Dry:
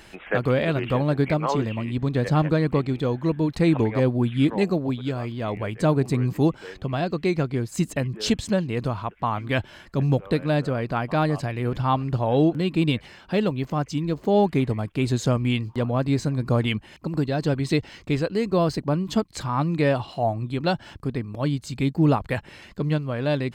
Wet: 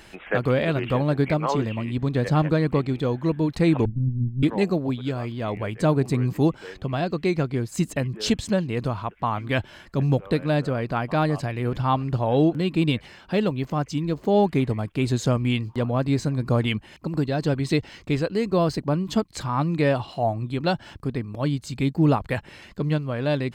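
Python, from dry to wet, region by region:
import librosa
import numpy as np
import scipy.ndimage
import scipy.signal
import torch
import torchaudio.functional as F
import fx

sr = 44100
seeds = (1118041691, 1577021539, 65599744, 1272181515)

y = fx.chain(x, sr, fx.lower_of_two(delay_ms=1.3),
    fx.cheby2_lowpass(hz=630.0, order=4, stop_db=50), at=(3.85, 4.43))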